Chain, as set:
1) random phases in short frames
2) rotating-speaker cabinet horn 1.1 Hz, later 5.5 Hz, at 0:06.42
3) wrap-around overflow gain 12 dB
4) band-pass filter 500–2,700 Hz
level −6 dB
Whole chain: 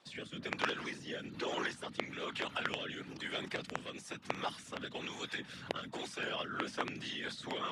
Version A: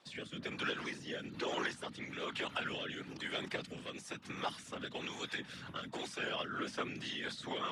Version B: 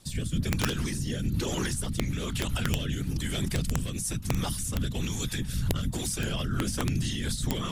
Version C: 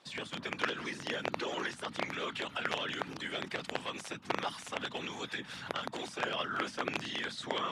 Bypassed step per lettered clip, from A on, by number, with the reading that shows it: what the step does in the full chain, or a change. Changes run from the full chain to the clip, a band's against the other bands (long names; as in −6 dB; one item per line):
3, distortion level −14 dB
4, 125 Hz band +18.5 dB
2, change in crest factor −3.0 dB